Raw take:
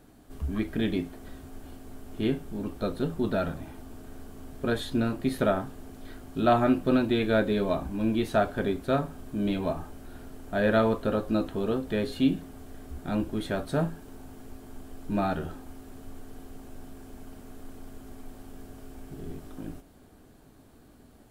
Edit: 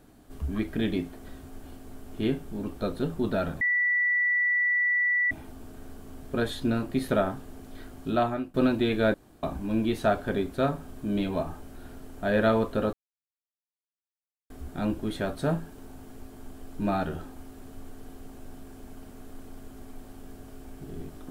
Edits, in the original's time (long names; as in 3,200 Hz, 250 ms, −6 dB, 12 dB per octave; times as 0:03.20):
0:03.61: insert tone 1,960 Hz −21.5 dBFS 1.70 s
0:06.33–0:06.84: fade out, to −22 dB
0:07.44–0:07.73: fill with room tone
0:11.23–0:12.80: silence